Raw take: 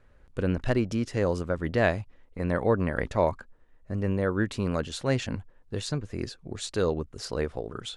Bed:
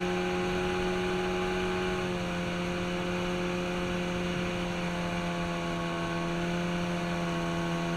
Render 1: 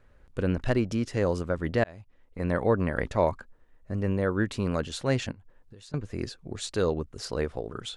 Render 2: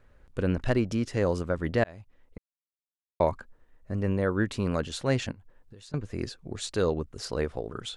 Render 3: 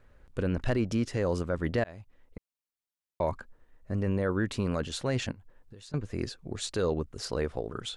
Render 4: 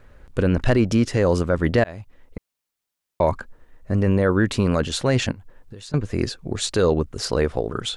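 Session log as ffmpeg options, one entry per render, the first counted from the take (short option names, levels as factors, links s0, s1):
-filter_complex "[0:a]asettb=1/sr,asplit=3[s0][s1][s2];[s0]atrim=end=5.314[s3];[s1]atrim=start=5.31:end=5.94,asetpts=PTS-STARTPTS,afade=t=in:d=0.004:c=qsin,afade=t=out:st=0.626:d=0.004:c=qsin,acompressor=threshold=0.00562:ratio=16:attack=3.2:release=140:knee=1:detection=peak[s4];[s2]atrim=start=5.936[s5];[s3][s4]acrossfade=d=0.004:c1=hsin:c2=qsin[s6];[s6][s5]acrossfade=d=0.004:c1=qsin:c2=hsin,asplit=2[s7][s8];[s7]atrim=end=1.84,asetpts=PTS-STARTPTS,afade=t=out:st=1.836:d=0.004:c=hsin[s9];[s8]atrim=start=1.84,asetpts=PTS-STARTPTS,afade=t=in:d=0.61[s10];[s9][s10]concat=n=2:v=0:a=1"
-filter_complex "[0:a]asplit=3[s0][s1][s2];[s0]atrim=end=2.38,asetpts=PTS-STARTPTS,afade=t=out:st=2.376:d=0.004:c=hsin[s3];[s1]atrim=start=2.38:end=3.2,asetpts=PTS-STARTPTS,volume=0[s4];[s2]atrim=start=3.2,asetpts=PTS-STARTPTS,afade=t=in:d=0.004:c=hsin[s5];[s3][s4][s5]concat=n=3:v=0:a=1"
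-af "alimiter=limit=0.119:level=0:latency=1:release=11"
-af "volume=3.16"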